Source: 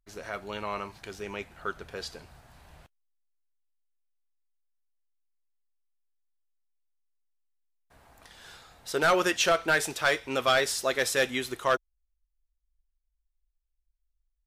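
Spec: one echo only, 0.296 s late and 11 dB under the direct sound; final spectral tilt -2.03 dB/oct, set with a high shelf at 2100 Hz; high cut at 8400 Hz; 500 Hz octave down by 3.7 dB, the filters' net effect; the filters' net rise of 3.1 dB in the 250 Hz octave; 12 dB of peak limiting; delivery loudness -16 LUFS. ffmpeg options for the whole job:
-af "lowpass=8.4k,equalizer=f=250:t=o:g=7.5,equalizer=f=500:t=o:g=-7.5,highshelf=f=2.1k:g=6.5,alimiter=limit=-22dB:level=0:latency=1,aecho=1:1:296:0.282,volume=17dB"

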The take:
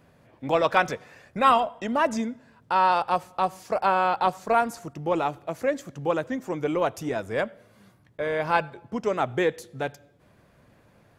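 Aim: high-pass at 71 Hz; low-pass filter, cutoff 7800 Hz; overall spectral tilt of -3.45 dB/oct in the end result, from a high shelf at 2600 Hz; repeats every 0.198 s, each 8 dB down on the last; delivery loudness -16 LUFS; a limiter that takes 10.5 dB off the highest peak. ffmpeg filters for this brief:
-af "highpass=71,lowpass=7.8k,highshelf=f=2.6k:g=6.5,alimiter=limit=-15dB:level=0:latency=1,aecho=1:1:198|396|594|792|990:0.398|0.159|0.0637|0.0255|0.0102,volume=11.5dB"

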